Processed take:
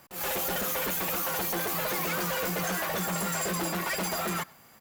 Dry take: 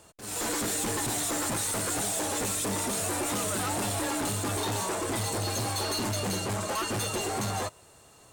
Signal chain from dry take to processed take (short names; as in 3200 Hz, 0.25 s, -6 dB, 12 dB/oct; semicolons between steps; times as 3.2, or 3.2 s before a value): speed mistake 45 rpm record played at 78 rpm; speakerphone echo 0.1 s, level -22 dB